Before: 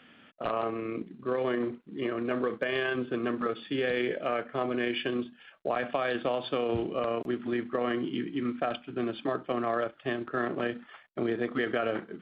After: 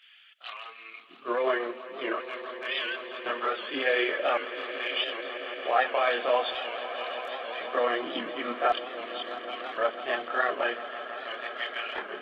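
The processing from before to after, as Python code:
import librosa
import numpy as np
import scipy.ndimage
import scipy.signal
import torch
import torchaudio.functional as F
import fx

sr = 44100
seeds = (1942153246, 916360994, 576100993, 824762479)

y = fx.filter_lfo_highpass(x, sr, shape='square', hz=0.46, low_hz=670.0, high_hz=2800.0, q=1.0)
y = fx.chorus_voices(y, sr, voices=6, hz=0.49, base_ms=25, depth_ms=2.6, mix_pct=60)
y = fx.echo_swell(y, sr, ms=166, loudest=5, wet_db=-16.0)
y = fx.record_warp(y, sr, rpm=78.0, depth_cents=100.0)
y = y * librosa.db_to_amplitude(8.5)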